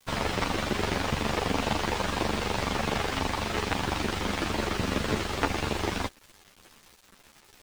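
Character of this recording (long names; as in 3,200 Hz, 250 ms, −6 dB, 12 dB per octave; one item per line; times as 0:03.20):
a quantiser's noise floor 8 bits, dither none
a shimmering, thickened sound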